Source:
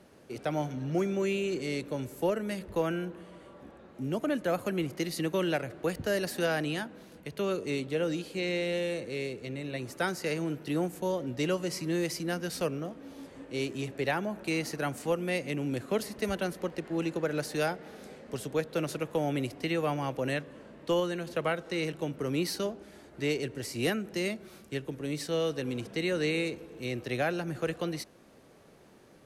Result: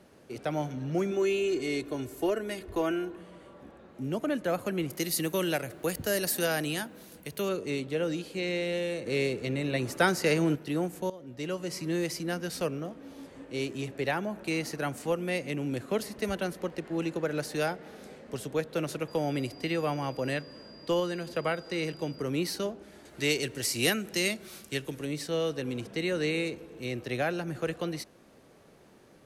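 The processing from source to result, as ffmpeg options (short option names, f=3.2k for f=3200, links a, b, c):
-filter_complex "[0:a]asettb=1/sr,asplit=3[a][b][c];[a]atrim=end=1.114[d];[b]atrim=start=1.11:end=3.17,asetpts=PTS-STARTPTS,afade=t=in:d=0.004:c=qsin,afade=t=out:st=2.056:d=0.004:c=qsin,aecho=1:1:2.8:0.65,atrim=end_sample=90846[e];[c]atrim=start=3.166[f];[d][e]acrossfade=d=0.004:c1=hsin:c2=qsin[g];[g][f]acrossfade=d=0.004:c1=qsin:c2=hsin,asettb=1/sr,asplit=3[h][i][j];[h]atrim=end=4.904[k];[i]atrim=start=4.9:end=7.49,asetpts=PTS-STARTPTS,afade=t=in:d=0.004:c=qsin,afade=t=out:st=2.586:d=0.004:c=qsin,aemphasis=mode=production:type=50fm[l];[j]atrim=start=7.486[m];[k][l]acrossfade=d=0.004:c1=hsin:c2=qsin[n];[n][m]acrossfade=d=0.004:c1=qsin:c2=hsin,asettb=1/sr,asplit=3[o][p][q];[o]atrim=end=9.064[r];[p]atrim=start=9.06:end=10.56,asetpts=PTS-STARTPTS,afade=t=in:d=0.004:c=qsin,afade=t=out:st=1.496:d=0.004:c=qsin,acontrast=66[s];[q]atrim=start=10.556[t];[r][s]acrossfade=d=0.004:c1=hsin:c2=qsin[u];[u][t]acrossfade=d=0.004:c1=qsin:c2=hsin,asettb=1/sr,asplit=3[v][w][x];[v]atrim=end=19.084[y];[w]atrim=start=19.08:end=22.22,asetpts=PTS-STARTPTS,afade=t=in:d=0.004:c=qsin,afade=t=out:st=3.136:d=0.004:c=qsin,aeval=exprs='val(0)+0.00251*sin(2*PI*4800*n/s)':c=same[z];[x]atrim=start=22.216[aa];[y][z]acrossfade=d=0.004:c1=hsin:c2=qsin[ab];[ab][aa]acrossfade=d=0.004:c1=qsin:c2=hsin,asettb=1/sr,asplit=3[ac][ad][ae];[ac]atrim=end=23.054[af];[ad]atrim=start=23.05:end=25.05,asetpts=PTS-STARTPTS,afade=t=in:d=0.004:c=qsin,afade=t=out:st=1.996:d=0.004:c=qsin,highshelf=f=2.2k:g=11.5[ag];[ae]atrim=start=25.046[ah];[af][ag]acrossfade=d=0.004:c1=hsin:c2=qsin[ai];[ai][ah]acrossfade=d=0.004:c1=qsin:c2=hsin,asplit=2[aj][ak];[aj]atrim=end=11.1,asetpts=PTS-STARTPTS,afade=t=out:st=11.096:d=0.004:c=hsin:silence=0.149624[al];[ak]atrim=start=11.1,asetpts=PTS-STARTPTS,afade=t=in:d=0.76:silence=0.149624[am];[al][am]concat=n=2:v=0:a=1"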